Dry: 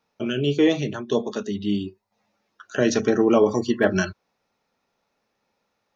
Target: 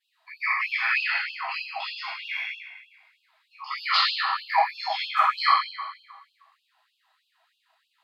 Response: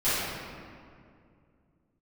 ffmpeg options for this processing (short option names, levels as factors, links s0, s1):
-filter_complex "[0:a]asetrate=32667,aresample=44100[s0];[1:a]atrim=start_sample=2205,asetrate=70560,aresample=44100[s1];[s0][s1]afir=irnorm=-1:irlink=0,afftfilt=real='re*gte(b*sr/1024,620*pow(2600/620,0.5+0.5*sin(2*PI*3.2*pts/sr)))':imag='im*gte(b*sr/1024,620*pow(2600/620,0.5+0.5*sin(2*PI*3.2*pts/sr)))':win_size=1024:overlap=0.75"